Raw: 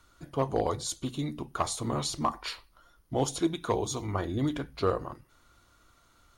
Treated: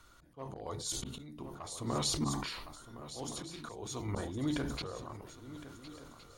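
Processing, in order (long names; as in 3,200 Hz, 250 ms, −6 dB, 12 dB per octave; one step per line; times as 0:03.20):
volume swells 628 ms
hum removal 69.85 Hz, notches 13
on a send: feedback echo with a long and a short gap by turns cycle 1,416 ms, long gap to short 3 to 1, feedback 40%, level −14 dB
on the sum: level that may fall only so fast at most 39 dB per second
level +1 dB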